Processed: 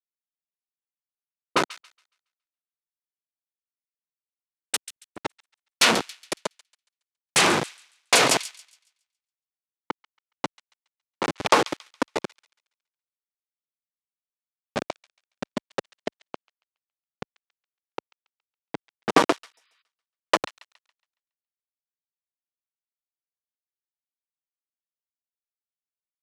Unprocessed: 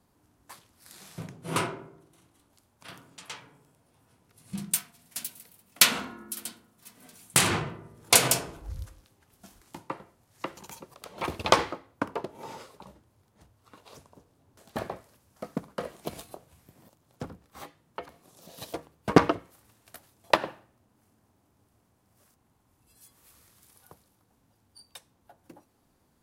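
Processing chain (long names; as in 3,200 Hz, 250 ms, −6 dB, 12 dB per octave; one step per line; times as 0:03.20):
hold until the input has moved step −22 dBFS
low-pass that shuts in the quiet parts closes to 370 Hz, open at −26.5 dBFS
on a send: delay with a high-pass on its return 139 ms, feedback 34%, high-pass 2,300 Hz, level −19 dB
on the sum: healed spectral selection 0:19.57–0:19.79, 990–5,000 Hz before
in parallel at −11.5 dB: sine wavefolder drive 16 dB, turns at 0.5 dBFS
on the sum: transient designer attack +1 dB, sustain +7 dB
band-pass filter 260–7,400 Hz
level −3.5 dB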